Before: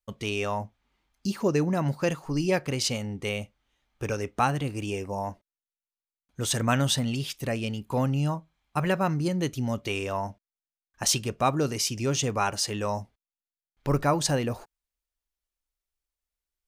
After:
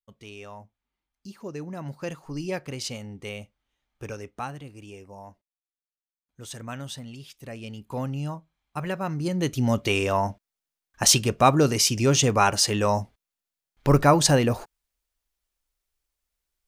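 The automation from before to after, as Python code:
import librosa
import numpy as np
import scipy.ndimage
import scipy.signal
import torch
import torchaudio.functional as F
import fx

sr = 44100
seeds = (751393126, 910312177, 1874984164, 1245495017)

y = fx.gain(x, sr, db=fx.line((1.38, -13.0), (2.22, -5.5), (4.05, -5.5), (4.68, -12.0), (7.32, -12.0), (7.86, -4.5), (9.01, -4.5), (9.69, 6.5)))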